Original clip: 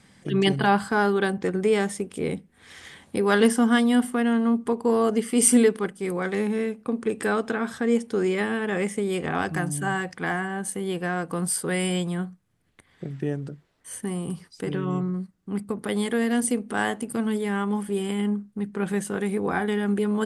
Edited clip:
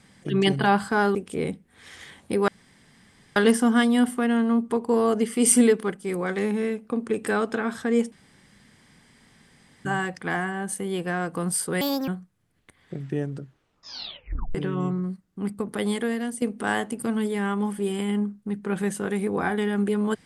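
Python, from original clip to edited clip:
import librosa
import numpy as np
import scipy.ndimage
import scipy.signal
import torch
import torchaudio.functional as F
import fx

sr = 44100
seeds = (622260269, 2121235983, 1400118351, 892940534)

y = fx.edit(x, sr, fx.cut(start_s=1.15, length_s=0.84),
    fx.insert_room_tone(at_s=3.32, length_s=0.88),
    fx.room_tone_fill(start_s=8.08, length_s=1.73),
    fx.speed_span(start_s=11.77, length_s=0.41, speed=1.53),
    fx.tape_stop(start_s=13.48, length_s=1.17),
    fx.fade_out_to(start_s=16.02, length_s=0.5, floor_db=-12.5), tone=tone)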